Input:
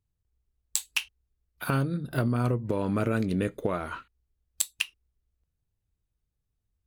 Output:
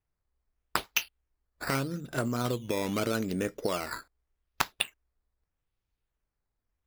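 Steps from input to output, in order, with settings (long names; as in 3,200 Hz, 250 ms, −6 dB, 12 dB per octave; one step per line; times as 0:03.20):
parametric band 100 Hz −8.5 dB 2.3 octaves
sample-and-hold swept by an LFO 10×, swing 100% 0.81 Hz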